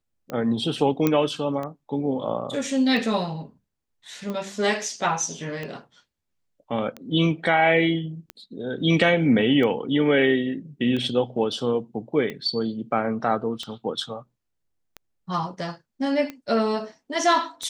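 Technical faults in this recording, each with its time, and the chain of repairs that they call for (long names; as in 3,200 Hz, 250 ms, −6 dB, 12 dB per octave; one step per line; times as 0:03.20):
scratch tick 45 rpm −19 dBFS
0:01.07: click −8 dBFS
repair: click removal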